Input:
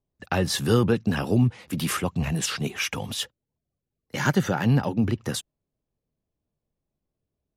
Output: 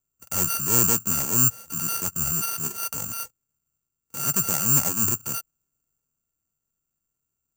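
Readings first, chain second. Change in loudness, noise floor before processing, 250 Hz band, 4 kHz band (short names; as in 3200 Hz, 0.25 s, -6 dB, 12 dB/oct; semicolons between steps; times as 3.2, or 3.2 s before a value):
+3.5 dB, under -85 dBFS, -9.0 dB, -5.5 dB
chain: sample sorter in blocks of 32 samples; careless resampling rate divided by 6×, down filtered, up zero stuff; transient shaper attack -7 dB, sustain +3 dB; gain -6 dB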